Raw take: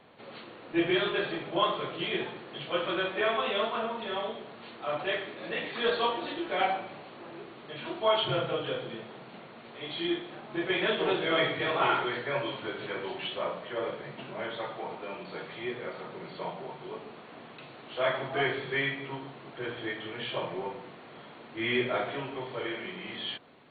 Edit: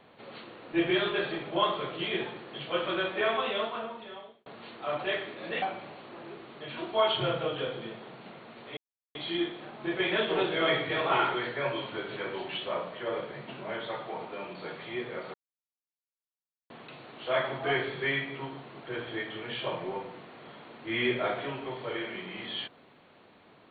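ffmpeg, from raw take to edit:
-filter_complex "[0:a]asplit=6[a][b][c][d][e][f];[a]atrim=end=4.46,asetpts=PTS-STARTPTS,afade=t=out:st=3.38:d=1.08[g];[b]atrim=start=4.46:end=5.622,asetpts=PTS-STARTPTS,afade=t=in:d=0.004:c=hsin[h];[c]atrim=start=6.698:end=9.85,asetpts=PTS-STARTPTS,afade=t=out:st=3.148:d=0.004:c=hsin,apad=pad_dur=0.38[i];[d]atrim=start=9.85:end=16.04,asetpts=PTS-STARTPTS,afade=t=in:d=0.004:c=hsin,afade=t=out:st=6.186:d=0.004:c=hsin[j];[e]atrim=start=16.04:end=17.4,asetpts=PTS-STARTPTS,volume=0[k];[f]atrim=start=17.4,asetpts=PTS-STARTPTS,afade=t=in:d=0.004:c=hsin[l];[g][h]concat=n=2:v=0:a=1[m];[i][j][k][l]concat=n=4:v=0:a=1[n];[m][n]acrossfade=d=0.004:c1=hsin:c2=hsin"

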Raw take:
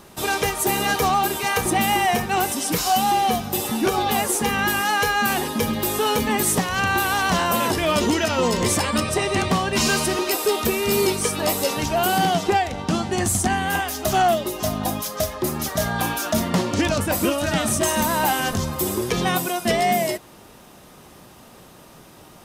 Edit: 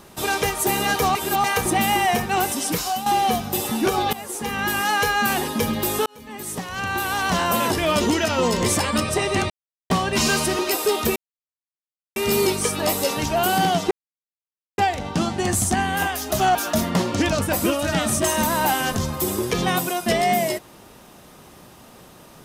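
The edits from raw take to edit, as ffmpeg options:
-filter_complex "[0:a]asplit=10[a][b][c][d][e][f][g][h][i][j];[a]atrim=end=1.152[k];[b]atrim=start=1.148:end=1.442,asetpts=PTS-STARTPTS,areverse[l];[c]atrim=start=1.438:end=3.06,asetpts=PTS-STARTPTS,afade=t=out:st=1.232:d=0.39:silence=0.281838[m];[d]atrim=start=3.06:end=4.13,asetpts=PTS-STARTPTS,afade=t=in:d=0.004:c=hsin:silence=0.281838,afade=t=out:st=1.066:d=0.004:c=hsin:silence=0.149624[n];[e]atrim=start=4.13:end=6.06,asetpts=PTS-STARTPTS,afade=t=in:d=0.73:silence=0.149624,afade=t=out:st=1.926:d=0.004:c=hsin[o];[f]atrim=start=6.06:end=9.5,asetpts=PTS-STARTPTS,afade=t=in:d=1.45,afade=t=out:st=3.436:d=0.004:c=hsin,apad=pad_dur=0.4[p];[g]atrim=start=9.5:end=10.76,asetpts=PTS-STARTPTS,afade=t=in:d=0.004:c=hsin,afade=t=out:st=1.256:d=0.004:c=hsin,apad=pad_dur=1[q];[h]atrim=start=10.76:end=12.51,asetpts=PTS-STARTPTS,afade=t=in:d=0.004:c=hsin,afade=t=out:st=1.746:d=0.004:c=hsin,apad=pad_dur=0.87[r];[i]atrim=start=12.51:end=14.282,asetpts=PTS-STARTPTS,afade=t=in:d=0.004:c=hsin[s];[j]atrim=start=16.138[t];[k][l]acrossfade=d=0.004:c1=hsin:c2=hsin[u];[m][n][o][p][q][r][s]concat=n=7:v=0:a=1[v];[u][v]acrossfade=d=0.004:c1=hsin:c2=hsin[w];[w][t]acrossfade=d=0.004:c1=hsin:c2=hsin"

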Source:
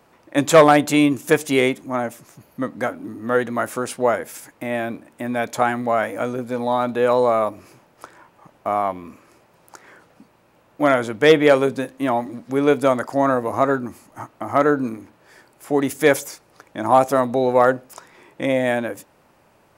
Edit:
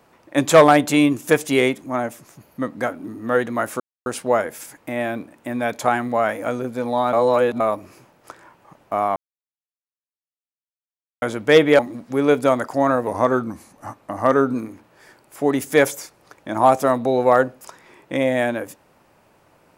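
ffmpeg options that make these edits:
-filter_complex "[0:a]asplit=9[a][b][c][d][e][f][g][h][i];[a]atrim=end=3.8,asetpts=PTS-STARTPTS,afade=t=out:st=3.796:d=0.004:c=hsin,apad=pad_dur=0.26[j];[b]atrim=start=3.8:end=6.872,asetpts=PTS-STARTPTS,afade=t=in:d=0.004:c=hsin[k];[c]atrim=start=6.868:end=7.342,asetpts=PTS-STARTPTS,areverse[l];[d]atrim=start=7.338:end=8.9,asetpts=PTS-STARTPTS,afade=t=out:st=1.558:d=0.004:c=hsin[m];[e]atrim=start=8.9:end=10.96,asetpts=PTS-STARTPTS,volume=0[n];[f]atrim=start=10.96:end=11.532,asetpts=PTS-STARTPTS,afade=t=in:d=0.004:c=hsin[o];[g]atrim=start=12.178:end=13.464[p];[h]atrim=start=13.46:end=14.82,asetpts=PTS-STARTPTS,asetrate=41013,aresample=44100,atrim=end_sample=64490,asetpts=PTS-STARTPTS[q];[i]atrim=start=14.816[r];[j][k]concat=n=2:v=0:a=1[s];[s][l]acrossfade=d=0.004:c1=hsin:c2=hsin[t];[m][n][o]concat=n=3:v=0:a=1[u];[t][u]acrossfade=d=0.004:c1=hsin:c2=hsin[v];[v][p]acrossfade=d=0.004:c1=hsin:c2=hsin[w];[w][q]acrossfade=d=0.004:c1=hsin:c2=hsin[x];[x][r]acrossfade=d=0.004:c1=hsin:c2=hsin"

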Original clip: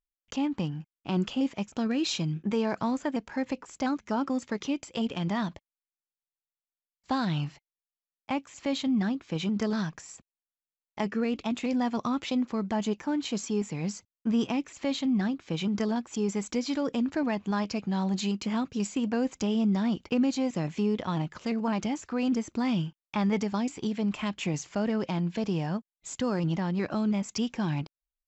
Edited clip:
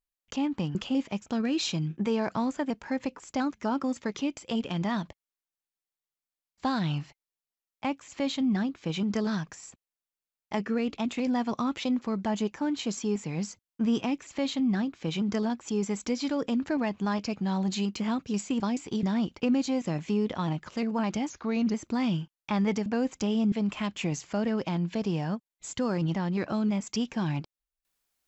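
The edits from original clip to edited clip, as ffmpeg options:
-filter_complex "[0:a]asplit=8[a][b][c][d][e][f][g][h];[a]atrim=end=0.752[i];[b]atrim=start=1.208:end=19.062[j];[c]atrim=start=23.508:end=23.942[k];[d]atrim=start=19.718:end=21.994[l];[e]atrim=start=21.99:end=22.39,asetpts=PTS-STARTPTS,asetrate=40131,aresample=44100[m];[f]atrim=start=22.386:end=23.512[n];[g]atrim=start=19.058:end=19.722[o];[h]atrim=start=23.938[p];[i][j]acrossfade=d=0.004:c1=hsin:c2=hsin[q];[q][k]acrossfade=d=0.004:c1=hsin:c2=hsin[r];[r][l]acrossfade=d=0.004:c1=hsin:c2=hsin[s];[s][m]acrossfade=d=0.004:c1=hsin:c2=hsin[t];[t][n]acrossfade=d=0.004:c1=hsin:c2=hsin[u];[u][o]acrossfade=d=0.004:c1=hsin:c2=hsin[v];[v][p]acrossfade=d=0.004:c1=hsin:c2=hsin"

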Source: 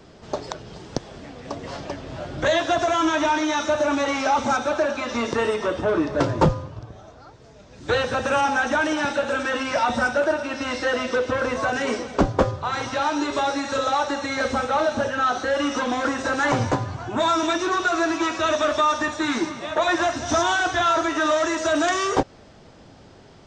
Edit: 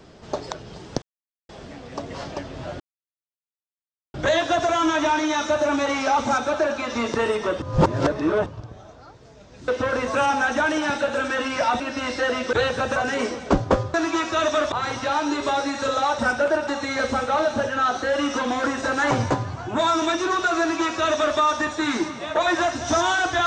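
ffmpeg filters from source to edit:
-filter_complex "[0:a]asplit=14[a][b][c][d][e][f][g][h][i][j][k][l][m][n];[a]atrim=end=1.02,asetpts=PTS-STARTPTS,afade=t=out:st=1.016:d=0.004:c=hsin,apad=pad_dur=0.47[o];[b]atrim=start=1.02:end=2.33,asetpts=PTS-STARTPTS,afade=t=in:d=0.004:c=hsin,afade=t=out:st=1.306:d=0.004:c=hsin,apad=pad_dur=1.34[p];[c]atrim=start=2.33:end=5.812,asetpts=PTS-STARTPTS,afade=t=in:d=0.004:c=hsin[q];[d]atrim=start=5.808:end=6.652,asetpts=PTS-STARTPTS,areverse[r];[e]atrim=start=6.648:end=7.872[s];[f]atrim=start=11.168:end=11.642[t];[g]atrim=start=8.298:end=9.952[u];[h]atrim=start=10.438:end=11.172[v];[i]atrim=start=7.868:end=8.302[w];[j]atrim=start=11.638:end=12.622[x];[k]atrim=start=18.008:end=18.792[y];[l]atrim=start=12.618:end=14.092[z];[m]atrim=start=9.948:end=10.442[aa];[n]atrim=start=14.088[ab];[o][p][q]concat=n=3:v=0:a=1[ac];[ac][r]acrossfade=d=0.004:c1=hsin:c2=hsin[ad];[ad][s]acrossfade=d=0.004:c1=hsin:c2=hsin[ae];[ae][t]acrossfade=d=0.004:c1=hsin:c2=hsin[af];[af][u]acrossfade=d=0.004:c1=hsin:c2=hsin[ag];[ag][v]acrossfade=d=0.004:c1=hsin:c2=hsin[ah];[ah][w]acrossfade=d=0.004:c1=hsin:c2=hsin[ai];[ai][x]acrossfade=d=0.004:c1=hsin:c2=hsin[aj];[aj][y]acrossfade=d=0.004:c1=hsin:c2=hsin[ak];[ak][z]acrossfade=d=0.004:c1=hsin:c2=hsin[al];[al][aa]acrossfade=d=0.004:c1=hsin:c2=hsin[am];[am][ab]acrossfade=d=0.004:c1=hsin:c2=hsin"

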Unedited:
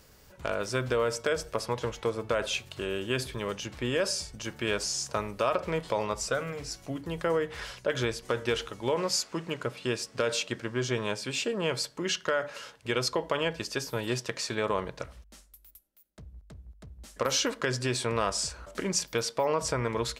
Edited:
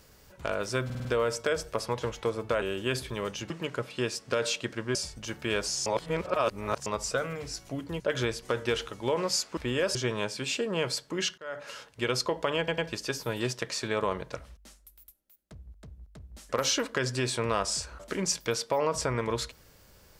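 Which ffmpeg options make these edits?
-filter_complex "[0:a]asplit=16[a][b][c][d][e][f][g][h][i][j][k][l][m][n][o][p];[a]atrim=end=0.902[q];[b]atrim=start=0.848:end=0.902[r];[c]atrim=start=0.848:end=0.902[s];[d]atrim=start=0.848:end=0.902[t];[e]atrim=start=0.848:end=2.422[u];[f]atrim=start=2.858:end=3.742[v];[g]atrim=start=9.368:end=10.822[w];[h]atrim=start=4.118:end=5.032[x];[i]atrim=start=5.028:end=6.032,asetpts=PTS-STARTPTS,areverse[y];[j]atrim=start=6.028:end=7.172[z];[k]atrim=start=7.798:end=9.372[aa];[l]atrim=start=3.738:end=4.122[ab];[m]atrim=start=10.818:end=12.25,asetpts=PTS-STARTPTS,afade=t=out:st=1.428:d=0.004:c=hsin[ac];[n]atrim=start=12.25:end=13.552,asetpts=PTS-STARTPTS,afade=t=in:d=0.33[ad];[o]atrim=start=13.448:end=13.552[ae];[p]atrim=start=13.448[af];[q][r]acrossfade=d=0.004:c1=hsin:c2=hsin[ag];[ag][s]acrossfade=d=0.004:c1=hsin:c2=hsin[ah];[ah][t]acrossfade=d=0.004:c1=hsin:c2=hsin[ai];[ai][u]acrossfade=d=0.004:c1=hsin:c2=hsin[aj];[aj][v]acrossfade=d=0.004:c1=hsin:c2=hsin[ak];[ak][w]acrossfade=d=0.004:c1=hsin:c2=hsin[al];[al][x]acrossfade=d=0.004:c1=hsin:c2=hsin[am];[am][y]acrossfade=d=0.004:c1=hsin:c2=hsin[an];[an][z]acrossfade=d=0.004:c1=hsin:c2=hsin[ao];[ao][aa]acrossfade=d=0.004:c1=hsin:c2=hsin[ap];[ap][ab]acrossfade=d=0.004:c1=hsin:c2=hsin[aq];[ac][ad]concat=n=2:v=0:a=1[ar];[aq][ar]acrossfade=d=0.004:c1=hsin:c2=hsin[as];[as][ae]acrossfade=d=0.004:c1=hsin:c2=hsin[at];[at][af]acrossfade=d=0.004:c1=hsin:c2=hsin"

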